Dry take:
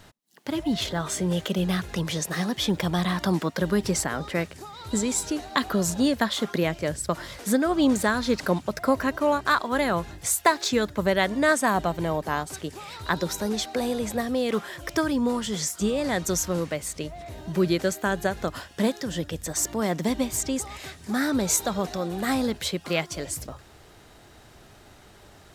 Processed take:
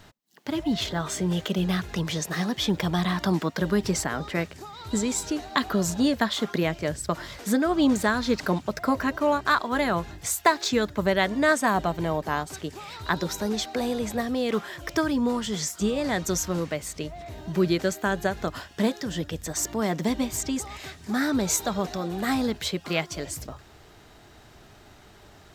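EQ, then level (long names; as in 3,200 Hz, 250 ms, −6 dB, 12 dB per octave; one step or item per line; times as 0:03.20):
parametric band 10,000 Hz −6.5 dB 0.53 octaves
notch filter 530 Hz, Q 14
0.0 dB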